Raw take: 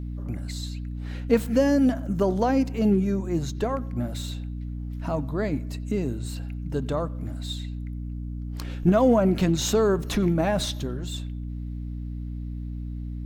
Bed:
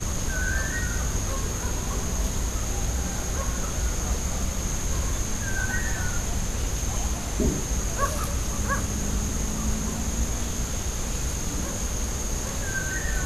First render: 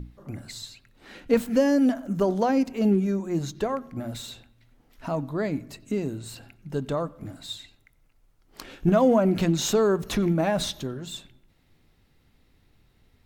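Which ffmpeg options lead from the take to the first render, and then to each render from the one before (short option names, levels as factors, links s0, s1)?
-af "bandreject=f=60:t=h:w=6,bandreject=f=120:t=h:w=6,bandreject=f=180:t=h:w=6,bandreject=f=240:t=h:w=6,bandreject=f=300:t=h:w=6"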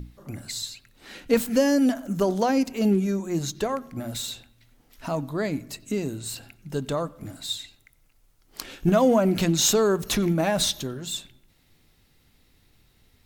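-af "highshelf=f=3200:g=10"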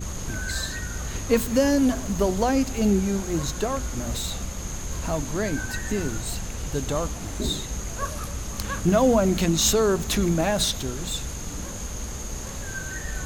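-filter_complex "[1:a]volume=0.596[s0];[0:a][s0]amix=inputs=2:normalize=0"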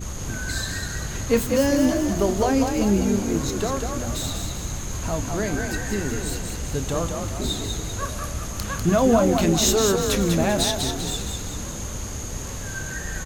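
-filter_complex "[0:a]asplit=2[s0][s1];[s1]adelay=30,volume=0.211[s2];[s0][s2]amix=inputs=2:normalize=0,asplit=7[s3][s4][s5][s6][s7][s8][s9];[s4]adelay=196,afreqshift=38,volume=0.562[s10];[s5]adelay=392,afreqshift=76,volume=0.254[s11];[s6]adelay=588,afreqshift=114,volume=0.114[s12];[s7]adelay=784,afreqshift=152,volume=0.0513[s13];[s8]adelay=980,afreqshift=190,volume=0.0232[s14];[s9]adelay=1176,afreqshift=228,volume=0.0104[s15];[s3][s10][s11][s12][s13][s14][s15]amix=inputs=7:normalize=0"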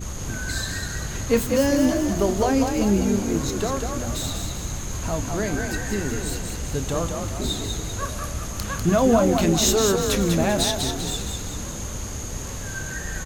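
-af anull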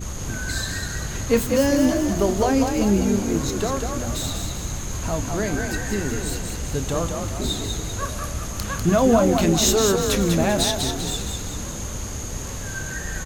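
-af "volume=1.12"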